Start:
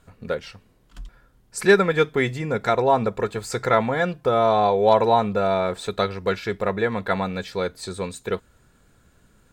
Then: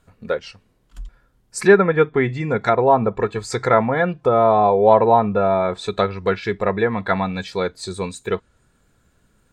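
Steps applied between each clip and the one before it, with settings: spectral noise reduction 7 dB; low-pass that closes with the level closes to 1.8 kHz, closed at -17 dBFS; trim +4 dB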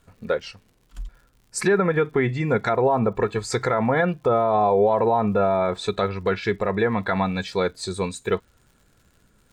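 peak limiter -11 dBFS, peak gain reduction 10 dB; crackle 130 per s -47 dBFS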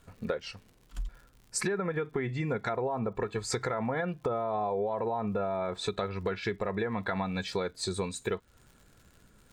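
compression 6:1, threshold -29 dBFS, peak gain reduction 13.5 dB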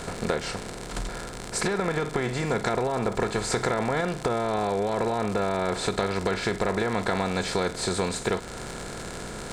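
spectral levelling over time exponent 0.4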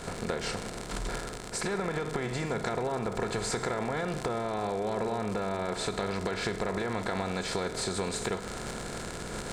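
recorder AGC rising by 64 dB/s; reverberation RT60 1.5 s, pre-delay 73 ms, DRR 13.5 dB; trim -6.5 dB

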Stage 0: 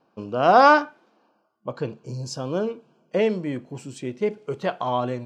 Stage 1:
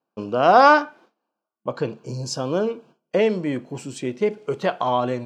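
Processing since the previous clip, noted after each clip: gate with hold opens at -50 dBFS; bass shelf 96 Hz -10.5 dB; in parallel at -1.5 dB: compression, threshold -25 dBFS, peak gain reduction 15 dB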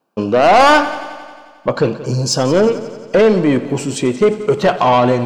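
in parallel at -0.5 dB: peak limiter -10.5 dBFS, peak gain reduction 8.5 dB; on the sum: saturation -12.5 dBFS, distortion -9 dB; multi-head delay 89 ms, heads first and second, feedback 59%, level -18.5 dB; trim +7 dB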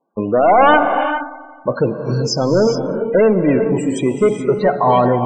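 loudest bins only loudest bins 32; gated-style reverb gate 450 ms rising, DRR 6.5 dB; trim -1.5 dB

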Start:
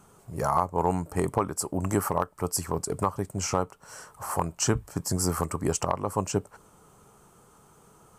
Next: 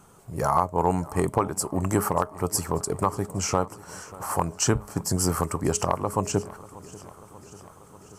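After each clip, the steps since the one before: de-hum 208.3 Hz, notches 3; modulated delay 589 ms, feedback 69%, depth 68 cents, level -20 dB; trim +2.5 dB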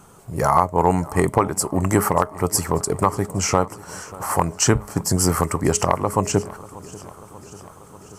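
dynamic bell 2 kHz, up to +7 dB, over -54 dBFS, Q 5.5; trim +5.5 dB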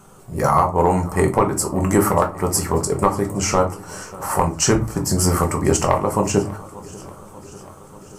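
simulated room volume 140 m³, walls furnished, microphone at 1.1 m; trim -1 dB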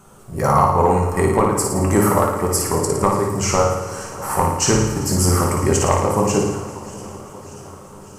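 on a send: flutter echo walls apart 9.6 m, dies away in 0.83 s; on the sum: modulated delay 194 ms, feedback 79%, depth 68 cents, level -18.5 dB; trim -1 dB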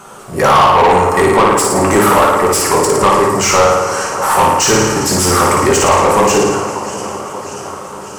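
overdrive pedal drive 23 dB, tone 4.2 kHz, clips at -1 dBFS

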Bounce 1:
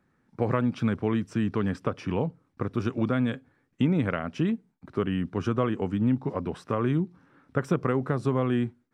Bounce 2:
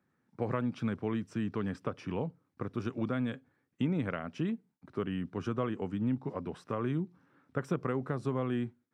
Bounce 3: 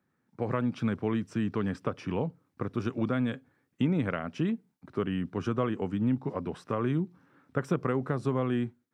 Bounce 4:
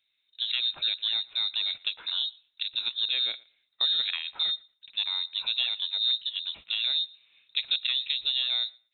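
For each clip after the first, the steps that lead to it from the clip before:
high-pass 84 Hz; trim -7 dB
level rider gain up to 4 dB
thinning echo 116 ms, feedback 18%, high-pass 300 Hz, level -23.5 dB; frequency inversion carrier 3.9 kHz

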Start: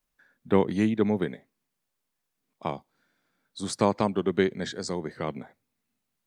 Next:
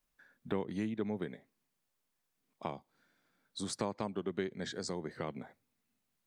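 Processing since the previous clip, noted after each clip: compression 2.5:1, threshold -36 dBFS, peak gain reduction 13.5 dB; trim -1.5 dB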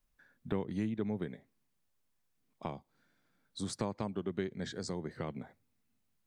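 bass shelf 150 Hz +11 dB; trim -2 dB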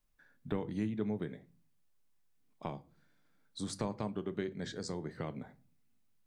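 simulated room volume 230 m³, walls furnished, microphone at 0.42 m; trim -1 dB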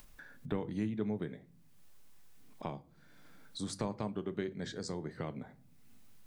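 upward compressor, threshold -41 dBFS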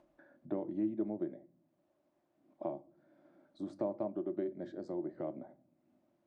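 two resonant band-passes 450 Hz, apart 0.79 oct; trim +9 dB

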